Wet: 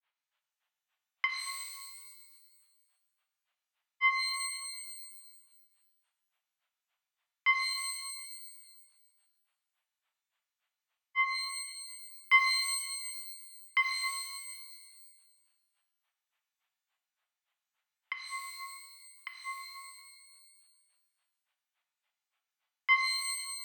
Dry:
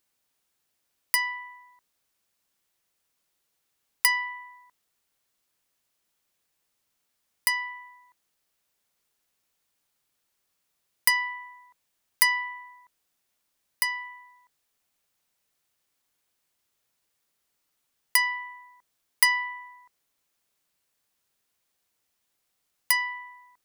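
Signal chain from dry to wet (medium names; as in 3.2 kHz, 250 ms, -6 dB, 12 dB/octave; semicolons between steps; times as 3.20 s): mistuned SSB +99 Hz 600–3400 Hz; granulator 147 ms, grains 3.5 per s, pitch spread up and down by 0 st; pitch-shifted reverb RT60 1.4 s, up +12 st, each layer -2 dB, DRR 4 dB; trim +2 dB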